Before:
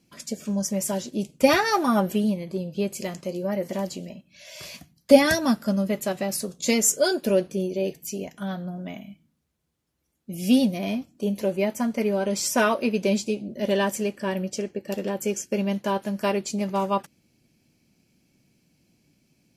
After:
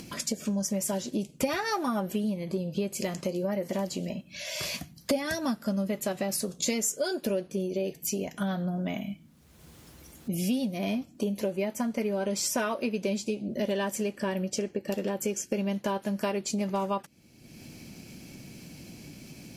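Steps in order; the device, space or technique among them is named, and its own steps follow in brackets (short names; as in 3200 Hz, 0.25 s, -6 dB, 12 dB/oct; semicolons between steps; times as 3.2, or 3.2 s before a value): upward and downward compression (upward compressor, threshold -41 dBFS; compressor 5:1, threshold -35 dBFS, peak gain reduction 23.5 dB); gain +7 dB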